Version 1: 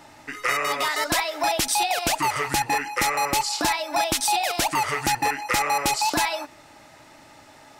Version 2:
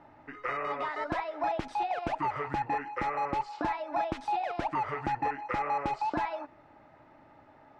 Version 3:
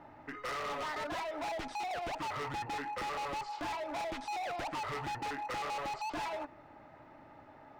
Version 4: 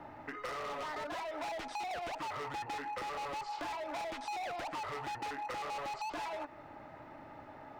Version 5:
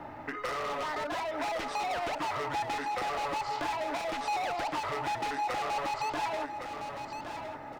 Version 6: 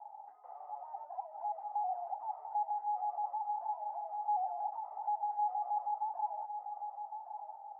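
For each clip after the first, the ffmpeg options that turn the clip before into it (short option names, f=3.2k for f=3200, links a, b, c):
-af "lowpass=1.4k,volume=-6dB"
-af "asoftclip=type=hard:threshold=-37.5dB,volume=1.5dB"
-filter_complex "[0:a]acrossover=split=360|990[a][b][c];[a]acompressor=threshold=-58dB:ratio=4[d];[b]acompressor=threshold=-47dB:ratio=4[e];[c]acompressor=threshold=-49dB:ratio=4[f];[d][e][f]amix=inputs=3:normalize=0,volume=4.5dB"
-af "aecho=1:1:1112|2224|3336:0.422|0.105|0.0264,volume=6dB"
-af "acrusher=bits=3:mode=log:mix=0:aa=0.000001,asuperpass=centerf=790:order=4:qfactor=6.2"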